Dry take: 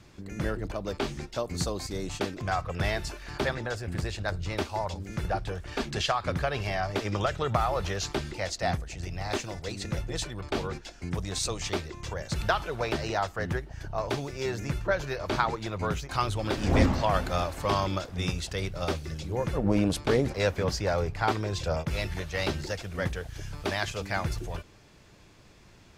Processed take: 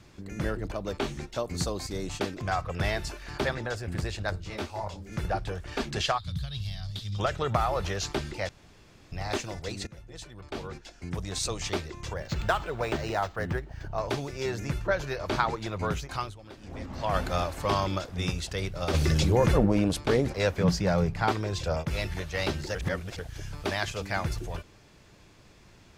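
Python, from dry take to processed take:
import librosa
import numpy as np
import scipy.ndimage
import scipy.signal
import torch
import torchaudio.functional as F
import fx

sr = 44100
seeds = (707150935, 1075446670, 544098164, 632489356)

y = fx.notch(x, sr, hz=4900.0, q=12.0, at=(0.82, 1.48))
y = fx.detune_double(y, sr, cents=32, at=(4.36, 5.11), fade=0.02)
y = fx.curve_eq(y, sr, hz=(150.0, 340.0, 520.0, 2500.0, 3600.0, 5800.0, 11000.0), db=(0, -25, -26, -16, 5, -6, -2), at=(6.17, 7.18), fade=0.02)
y = fx.resample_linear(y, sr, factor=4, at=(12.16, 13.93))
y = fx.env_flatten(y, sr, amount_pct=70, at=(18.93, 19.65), fade=0.02)
y = fx.peak_eq(y, sr, hz=180.0, db=13.5, octaves=0.47, at=(20.6, 21.29))
y = fx.edit(y, sr, fx.room_tone_fill(start_s=8.49, length_s=0.63),
    fx.fade_in_from(start_s=9.87, length_s=1.67, floor_db=-19.0),
    fx.fade_down_up(start_s=16.04, length_s=1.16, db=-17.5, fade_s=0.32),
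    fx.reverse_span(start_s=22.75, length_s=0.44), tone=tone)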